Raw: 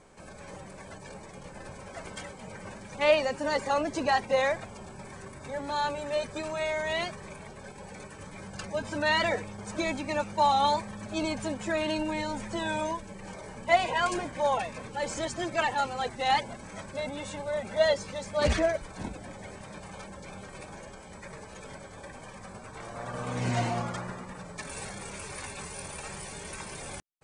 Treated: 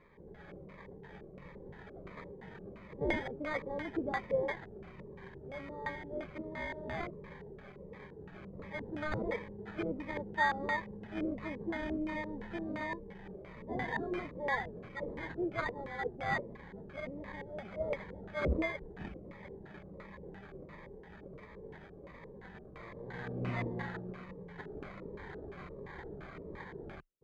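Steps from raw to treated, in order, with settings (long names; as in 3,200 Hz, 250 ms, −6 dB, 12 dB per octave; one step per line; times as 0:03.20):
EQ curve with evenly spaced ripples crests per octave 0.76, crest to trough 6 dB
decimation without filtering 16×
auto-filter low-pass square 2.9 Hz 440–2,100 Hz
phaser whose notches keep moving one way falling 1.4 Hz
level −7 dB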